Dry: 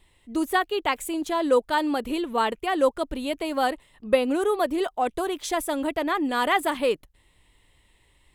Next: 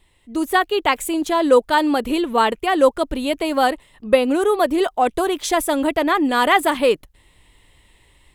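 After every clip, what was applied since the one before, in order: AGC gain up to 6 dB; gain +1.5 dB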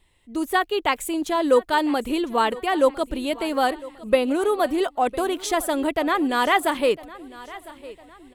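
feedback echo 1.005 s, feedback 42%, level -19 dB; gain -4 dB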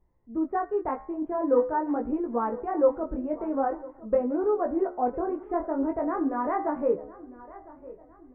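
Gaussian blur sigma 7.4 samples; de-hum 71.72 Hz, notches 32; chorus 0.45 Hz, delay 16.5 ms, depth 6.6 ms

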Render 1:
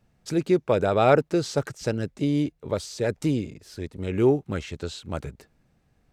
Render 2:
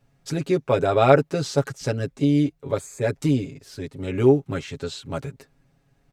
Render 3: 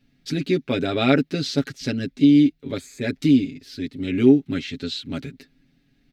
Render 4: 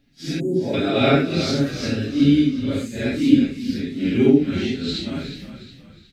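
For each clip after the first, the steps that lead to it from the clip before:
spectral gain 2.79–3.01, 2600–6200 Hz -19 dB; comb 7.3 ms, depth 81%
ten-band EQ 125 Hz -7 dB, 250 Hz +12 dB, 500 Hz -7 dB, 1000 Hz -12 dB, 2000 Hz +5 dB, 4000 Hz +9 dB, 8000 Hz -8 dB
phase scrambler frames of 0.2 s; spectral delete 0.4–0.74, 1000–6600 Hz; frequency-shifting echo 0.362 s, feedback 41%, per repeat -31 Hz, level -11 dB; gain +2 dB

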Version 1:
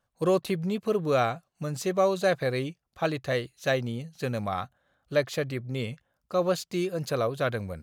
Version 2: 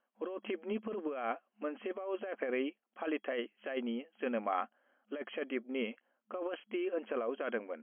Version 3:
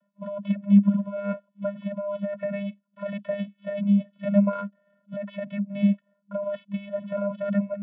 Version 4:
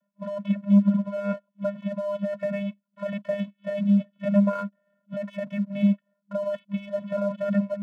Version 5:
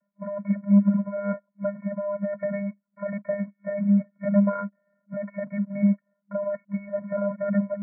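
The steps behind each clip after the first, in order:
FFT band-pass 210–3300 Hz; negative-ratio compressor -30 dBFS, ratio -1; gain -5.5 dB
vocoder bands 16, square 201 Hz; low shelf 330 Hz +8.5 dB; gain +8 dB
sample leveller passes 1; gain -2.5 dB
brick-wall FIR low-pass 2300 Hz

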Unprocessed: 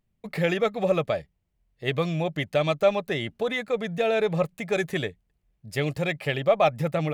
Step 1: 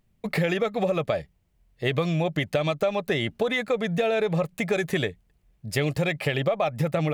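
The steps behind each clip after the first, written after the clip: in parallel at +2.5 dB: limiter -18 dBFS, peak gain reduction 9.5 dB; on the sum: compressor, threshold -21 dBFS, peak gain reduction 10 dB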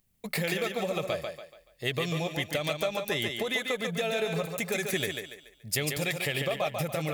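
pre-emphasis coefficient 0.8; thinning echo 0.143 s, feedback 38%, high-pass 200 Hz, level -4.5 dB; gain +6 dB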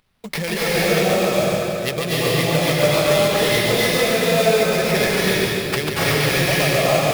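sample-rate reducer 7400 Hz, jitter 20%; reverb RT60 2.8 s, pre-delay 0.225 s, DRR -7.5 dB; gain +5 dB

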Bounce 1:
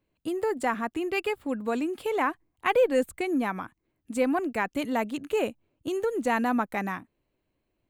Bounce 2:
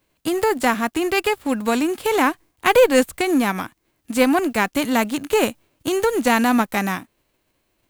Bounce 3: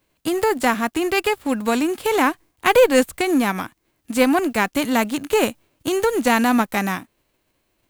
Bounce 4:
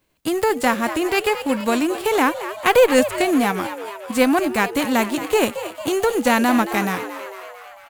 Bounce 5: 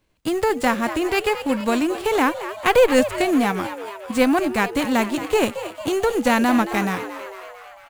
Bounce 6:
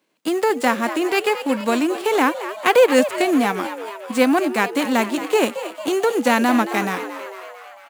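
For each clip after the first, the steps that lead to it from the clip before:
spectral whitening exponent 0.6; gain +8.5 dB
nothing audible
frequency-shifting echo 0.224 s, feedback 63%, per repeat +98 Hz, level -12 dB
median filter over 3 samples; low shelf 100 Hz +8.5 dB; gain -1.5 dB
HPF 210 Hz 24 dB/oct; gain +1.5 dB

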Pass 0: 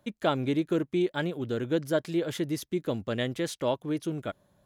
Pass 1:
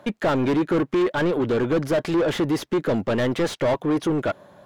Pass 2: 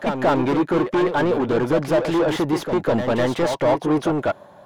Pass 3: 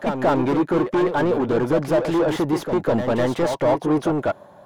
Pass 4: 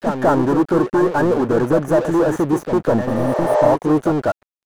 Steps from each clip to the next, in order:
overdrive pedal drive 31 dB, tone 1100 Hz, clips at -12 dBFS
bell 830 Hz +6.5 dB 0.85 oct; on a send: reverse echo 0.201 s -6.5 dB
bell 3100 Hz -3.5 dB 2.2 oct
Chebyshev band-stop 1800–5900 Hz, order 5; crossover distortion -37.5 dBFS; spectral repair 3.11–3.65, 350–8500 Hz both; gain +5 dB

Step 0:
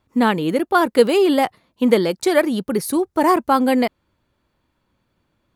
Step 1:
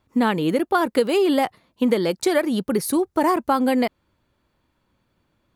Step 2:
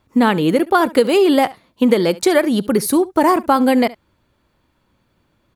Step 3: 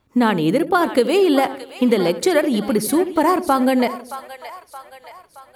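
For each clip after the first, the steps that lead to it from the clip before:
compressor, threshold -15 dBFS, peak gain reduction 8 dB
echo 70 ms -20 dB; gain +5.5 dB
split-band echo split 620 Hz, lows 83 ms, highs 0.622 s, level -12.5 dB; gain -2.5 dB

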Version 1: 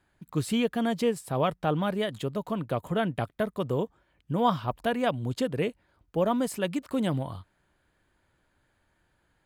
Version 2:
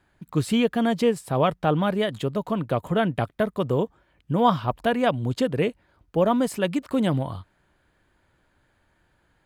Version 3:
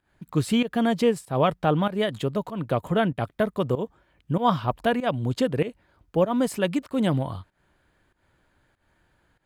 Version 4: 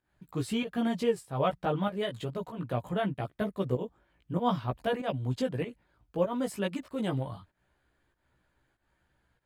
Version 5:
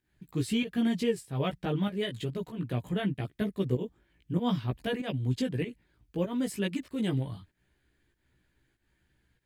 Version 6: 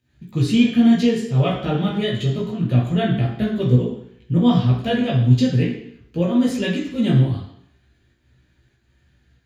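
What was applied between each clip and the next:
high shelf 6100 Hz -5 dB; gain +5 dB
pump 96 bpm, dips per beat 1, -16 dB, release 0.18 s
chorus voices 2, 0.6 Hz, delay 16 ms, depth 1.4 ms; gain -4.5 dB
band shelf 850 Hz -9.5 dB; gain +2.5 dB
reverb RT60 0.65 s, pre-delay 3 ms, DRR -2.5 dB

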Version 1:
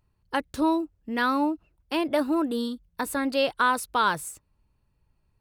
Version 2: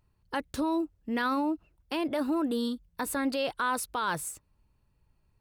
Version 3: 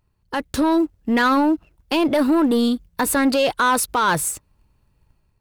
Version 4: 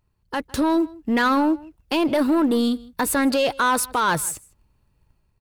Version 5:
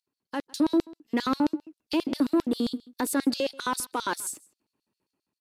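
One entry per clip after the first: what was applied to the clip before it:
limiter -21 dBFS, peak gain reduction 9.5 dB
sample leveller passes 1; AGC gain up to 6 dB; gain +4 dB
outdoor echo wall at 27 m, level -22 dB; gain -2 dB
LFO high-pass square 7.5 Hz 280–4400 Hz; downsampling 32000 Hz; gain -8.5 dB

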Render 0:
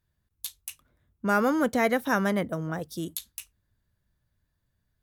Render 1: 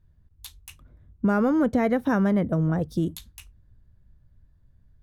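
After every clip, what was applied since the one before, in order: tilt -3.5 dB/oct; compressor 2.5:1, threshold -25 dBFS, peak gain reduction 7 dB; gain +4 dB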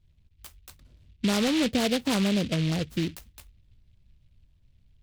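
noise-modulated delay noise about 2900 Hz, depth 0.15 ms; gain -3 dB

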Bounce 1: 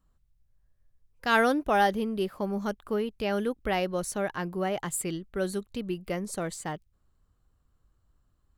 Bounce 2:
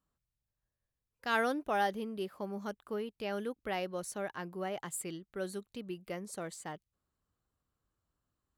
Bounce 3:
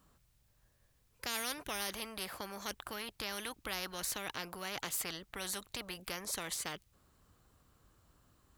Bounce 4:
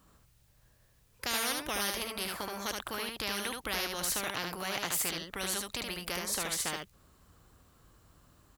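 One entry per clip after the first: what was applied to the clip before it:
HPF 180 Hz 6 dB/oct; gain -7.5 dB
spectral compressor 4:1; gain -2 dB
echo 74 ms -3.5 dB; gain +4.5 dB

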